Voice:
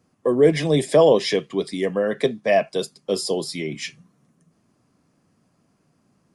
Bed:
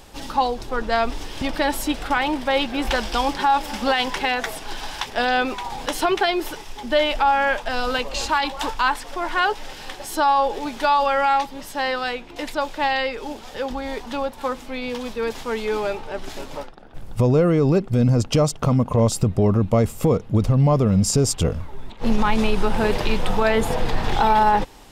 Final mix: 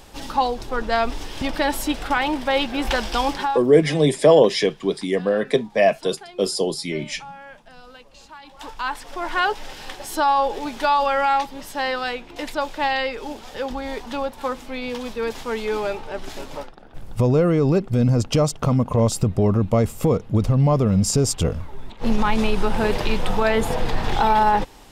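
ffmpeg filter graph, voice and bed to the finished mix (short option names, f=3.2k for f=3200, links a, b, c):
-filter_complex "[0:a]adelay=3300,volume=1.5dB[a];[1:a]volume=21dB,afade=t=out:st=3.34:d=0.3:silence=0.0841395,afade=t=in:st=8.44:d=0.92:silence=0.0891251[b];[a][b]amix=inputs=2:normalize=0"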